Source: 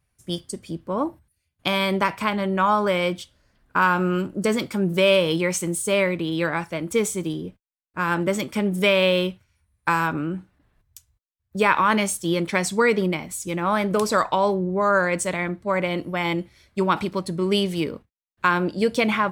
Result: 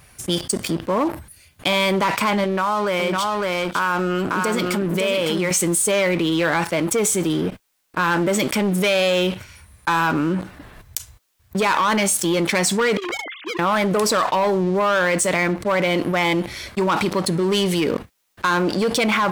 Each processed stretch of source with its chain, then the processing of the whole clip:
0:02.44–0:05.51: downward compressor 2 to 1, threshold −37 dBFS + single-tap delay 556 ms −4.5 dB
0:12.97–0:13.59: three sine waves on the formant tracks + high-pass filter 840 Hz 6 dB per octave + downward compressor 3 to 1, threshold −46 dBFS
whole clip: leveller curve on the samples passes 3; low-shelf EQ 190 Hz −8.5 dB; envelope flattener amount 70%; level −7.5 dB

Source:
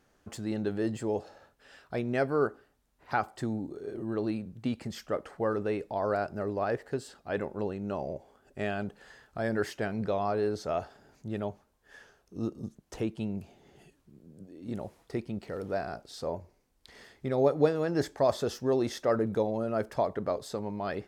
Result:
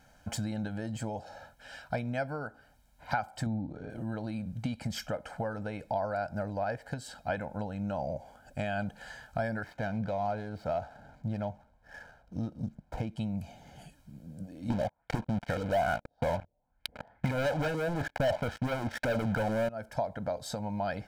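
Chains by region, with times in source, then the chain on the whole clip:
0:03.46–0:03.90: low-pass filter 4,300 Hz + low-shelf EQ 460 Hz +6 dB
0:09.63–0:13.16: running median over 15 samples + high-shelf EQ 6,300 Hz −8 dB
0:14.70–0:19.69: auto-filter low-pass saw up 2.3 Hz 340–2,600 Hz + leveller curve on the samples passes 5
whole clip: downward compressor 6 to 1, threshold −37 dBFS; comb filter 1.3 ms, depth 95%; level +4.5 dB

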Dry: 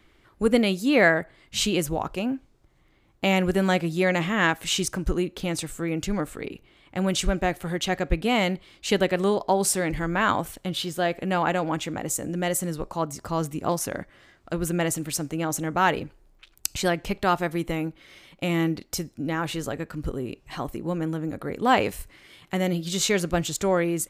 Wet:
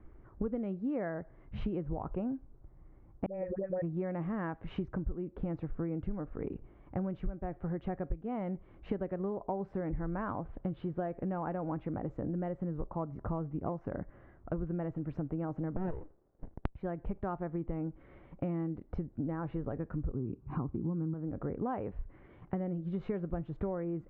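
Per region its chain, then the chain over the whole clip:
0:03.26–0:03.82: formant resonators in series e + transient designer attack +9 dB, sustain −10 dB + all-pass dispersion highs, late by 82 ms, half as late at 580 Hz
0:15.76–0:16.75: high-pass filter 350 Hz 24 dB per octave + windowed peak hold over 33 samples
0:20.14–0:21.14: high-pass filter 89 Hz + tilt shelving filter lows +5.5 dB, about 880 Hz + comb filter 0.8 ms, depth 68%
whole clip: Bessel low-pass filter 950 Hz, order 4; low-shelf EQ 120 Hz +9.5 dB; downward compressor 10 to 1, threshold −32 dBFS

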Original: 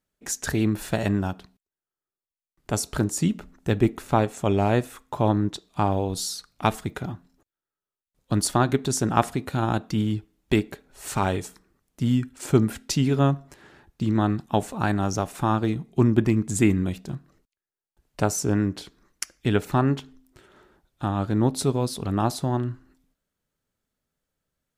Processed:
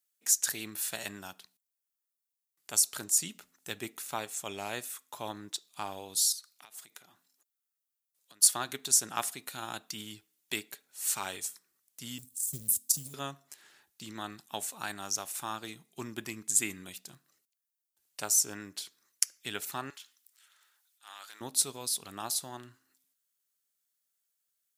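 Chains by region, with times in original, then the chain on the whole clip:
0:06.32–0:08.42: high-pass filter 320 Hz 6 dB per octave + downward compressor 10 to 1, threshold −40 dBFS
0:12.18–0:13.14: Chebyshev band-stop filter 130–9,500 Hz + transient designer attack +7 dB, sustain +11 dB + log-companded quantiser 8 bits
0:19.90–0:21.41: high-pass filter 1,200 Hz + transient designer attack −12 dB, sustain +4 dB
whole clip: high-pass filter 110 Hz; first-order pre-emphasis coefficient 0.97; level +4.5 dB

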